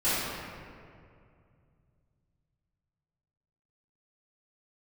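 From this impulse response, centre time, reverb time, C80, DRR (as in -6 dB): 153 ms, 2.3 s, -1.5 dB, -15.5 dB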